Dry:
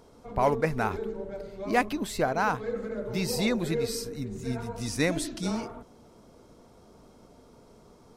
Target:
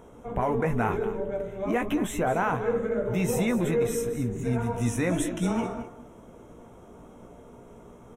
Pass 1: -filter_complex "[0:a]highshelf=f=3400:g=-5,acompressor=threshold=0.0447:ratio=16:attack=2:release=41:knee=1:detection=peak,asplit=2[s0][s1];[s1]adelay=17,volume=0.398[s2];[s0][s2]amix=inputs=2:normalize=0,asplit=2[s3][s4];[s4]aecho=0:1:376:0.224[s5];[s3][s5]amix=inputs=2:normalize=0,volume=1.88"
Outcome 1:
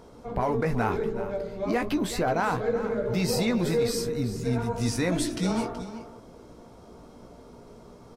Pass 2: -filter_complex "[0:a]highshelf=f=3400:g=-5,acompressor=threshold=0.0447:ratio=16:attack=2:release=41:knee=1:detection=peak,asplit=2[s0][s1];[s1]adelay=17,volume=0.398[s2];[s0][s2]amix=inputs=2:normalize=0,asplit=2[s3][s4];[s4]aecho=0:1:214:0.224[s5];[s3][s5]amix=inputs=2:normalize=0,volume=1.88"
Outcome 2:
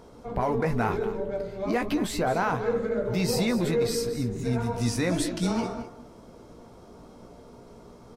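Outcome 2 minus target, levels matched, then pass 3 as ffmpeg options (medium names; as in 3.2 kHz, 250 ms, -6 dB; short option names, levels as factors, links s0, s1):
4 kHz band +8.0 dB
-filter_complex "[0:a]highshelf=f=3400:g=-5,acompressor=threshold=0.0447:ratio=16:attack=2:release=41:knee=1:detection=peak,asuperstop=centerf=4600:order=4:qfactor=1.7,asplit=2[s0][s1];[s1]adelay=17,volume=0.398[s2];[s0][s2]amix=inputs=2:normalize=0,asplit=2[s3][s4];[s4]aecho=0:1:214:0.224[s5];[s3][s5]amix=inputs=2:normalize=0,volume=1.88"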